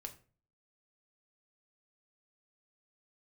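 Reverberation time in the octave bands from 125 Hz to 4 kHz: 0.60, 0.50, 0.45, 0.35, 0.35, 0.30 seconds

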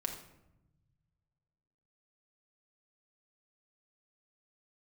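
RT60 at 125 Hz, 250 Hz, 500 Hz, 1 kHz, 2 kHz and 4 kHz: 2.5, 1.6, 0.95, 0.85, 0.70, 0.50 seconds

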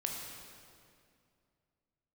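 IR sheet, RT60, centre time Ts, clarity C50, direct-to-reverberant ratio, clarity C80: 2.4 s, 89 ms, 1.5 dB, 0.0 dB, 3.0 dB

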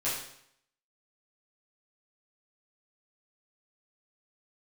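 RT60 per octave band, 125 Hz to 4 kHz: 0.70, 0.70, 0.70, 0.70, 0.70, 0.65 seconds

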